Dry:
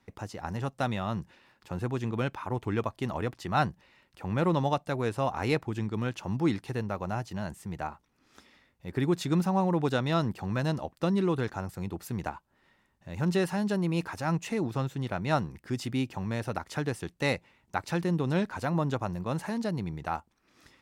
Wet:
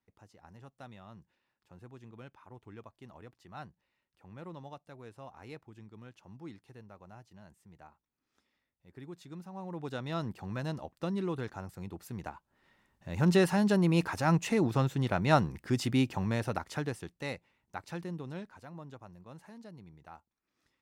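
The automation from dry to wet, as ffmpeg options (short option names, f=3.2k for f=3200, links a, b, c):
-af "volume=2.5dB,afade=t=in:st=9.5:d=0.79:silence=0.237137,afade=t=in:st=12.32:d=0.99:silence=0.334965,afade=t=out:st=16.06:d=1.18:silence=0.237137,afade=t=out:st=17.95:d=0.68:silence=0.375837"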